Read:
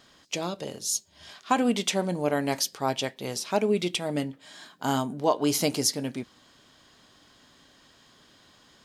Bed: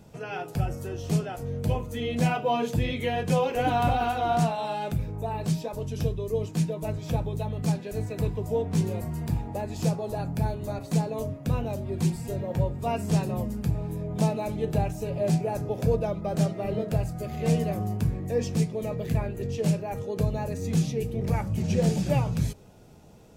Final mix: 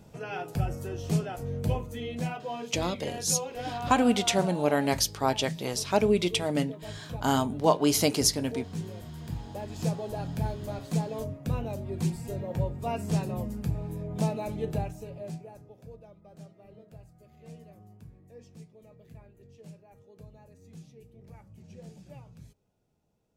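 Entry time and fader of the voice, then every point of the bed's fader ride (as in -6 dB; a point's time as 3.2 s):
2.40 s, +1.0 dB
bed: 1.69 s -1.5 dB
2.44 s -10.5 dB
9.06 s -10.5 dB
9.88 s -3.5 dB
14.68 s -3.5 dB
15.82 s -23.5 dB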